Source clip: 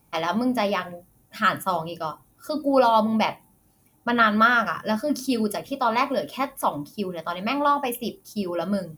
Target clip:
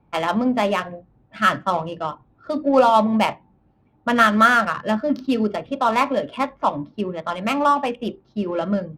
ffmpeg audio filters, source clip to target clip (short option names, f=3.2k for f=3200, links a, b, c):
-filter_complex "[0:a]lowpass=f=4.2k:w=0.5412,lowpass=f=4.2k:w=1.3066,acrossover=split=210[a][b];[b]adynamicsmooth=sensitivity=5:basefreq=2k[c];[a][c]amix=inputs=2:normalize=0,volume=3.5dB"